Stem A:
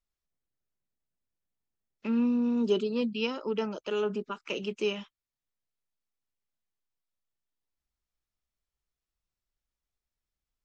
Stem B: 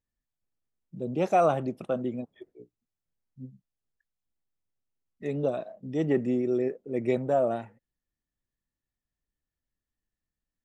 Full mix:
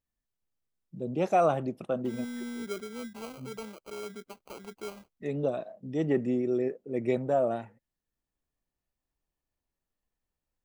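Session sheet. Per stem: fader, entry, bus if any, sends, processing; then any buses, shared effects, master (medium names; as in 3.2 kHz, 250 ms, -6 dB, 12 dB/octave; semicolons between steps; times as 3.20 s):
1.82 s -10 dB -> 2.42 s -2.5 dB, 0.00 s, no send, de-esser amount 95%; sample-rate reducer 1.8 kHz, jitter 0%; auto duck -8 dB, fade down 1.55 s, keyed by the second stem
-1.5 dB, 0.00 s, no send, none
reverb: none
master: none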